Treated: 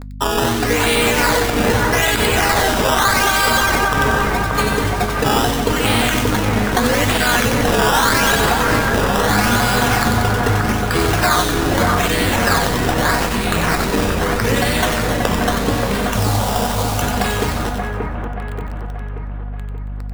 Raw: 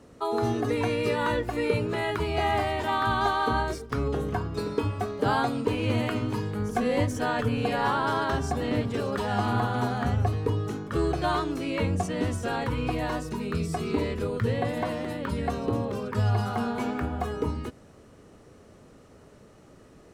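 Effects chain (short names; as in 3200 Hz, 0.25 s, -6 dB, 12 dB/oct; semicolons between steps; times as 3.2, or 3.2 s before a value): pre-emphasis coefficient 0.9; notches 60/120/180/240 Hz; 4.23–5.85 spectral delete 1000–2700 Hz; thirty-one-band EQ 125 Hz +5 dB, 200 Hz +6 dB, 1600 Hz +8 dB, 4000 Hz +3 dB; upward compressor, threshold -58 dBFS; decimation with a swept rate 14×, swing 100% 0.8 Hz; 16.13–17.02 fixed phaser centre 750 Hz, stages 4; bit-crush 9-bit; buzz 50 Hz, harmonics 5, -56 dBFS -6 dB/oct; resonator 240 Hz, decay 0.2 s, harmonics all, mix 40%; on a send: split-band echo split 2200 Hz, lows 0.581 s, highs 92 ms, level -4.5 dB; on the sum: maximiser +33.5 dB; gain -4.5 dB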